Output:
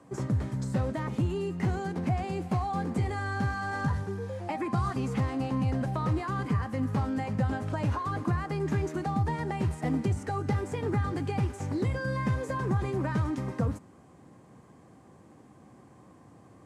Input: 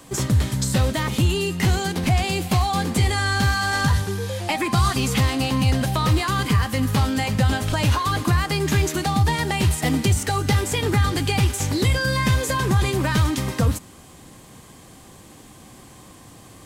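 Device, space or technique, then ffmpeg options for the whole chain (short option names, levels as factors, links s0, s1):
through cloth: -af "highpass=100,lowpass=9200,highshelf=f=2600:g=-15,equalizer=f=3400:t=o:w=1:g=-8,volume=0.473"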